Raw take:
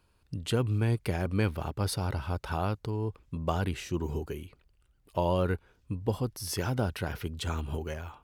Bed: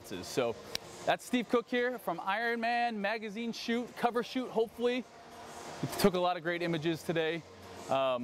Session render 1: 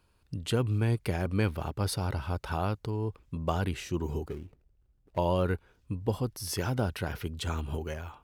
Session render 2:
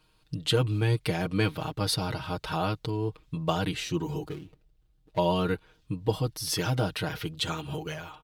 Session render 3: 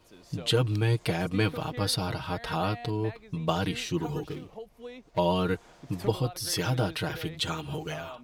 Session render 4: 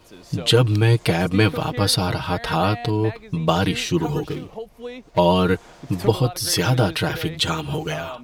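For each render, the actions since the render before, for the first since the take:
4.28–5.18 s: median filter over 41 samples
peaking EQ 3.7 kHz +8 dB 0.94 oct; comb 6.4 ms, depth 89%
add bed -12 dB
trim +9 dB; peak limiter -1 dBFS, peak gain reduction 1 dB

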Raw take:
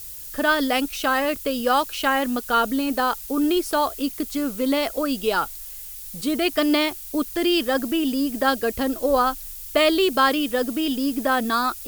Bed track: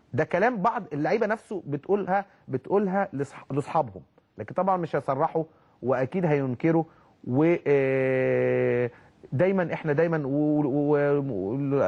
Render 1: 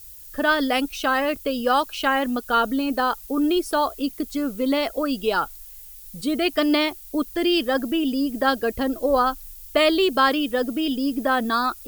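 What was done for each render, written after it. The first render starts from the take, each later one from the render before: noise reduction 8 dB, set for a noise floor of -37 dBFS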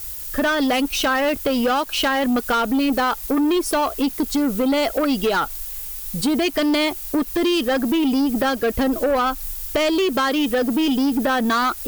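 compression, threshold -24 dBFS, peak gain reduction 10.5 dB; waveshaping leveller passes 3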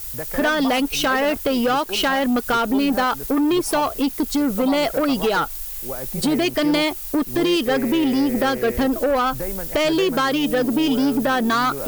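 add bed track -7.5 dB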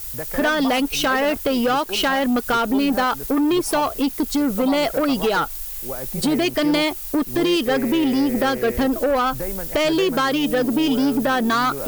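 no audible change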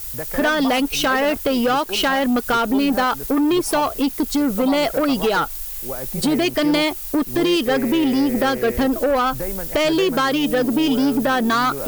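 trim +1 dB

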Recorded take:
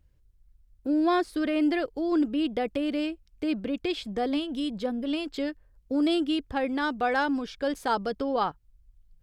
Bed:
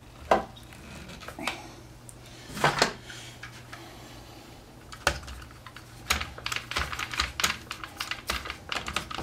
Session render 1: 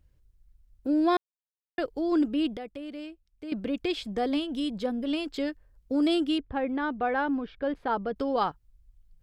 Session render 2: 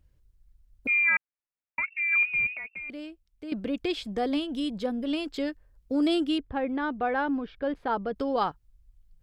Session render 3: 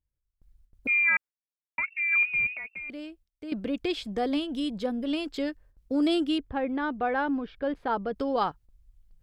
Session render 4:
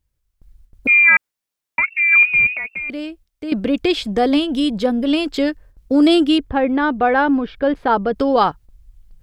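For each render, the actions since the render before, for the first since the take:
1.17–1.78 s: mute; 2.57–3.52 s: gain -10.5 dB; 6.38–8.16 s: distance through air 430 m
0.87–2.90 s: frequency inversion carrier 2.7 kHz
gate with hold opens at -51 dBFS
trim +12 dB; peak limiter -2 dBFS, peak gain reduction 1 dB

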